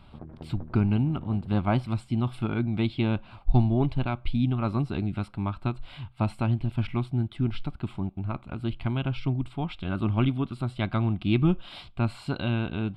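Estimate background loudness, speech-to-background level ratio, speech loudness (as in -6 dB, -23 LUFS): -45.5 LUFS, 17.0 dB, -28.5 LUFS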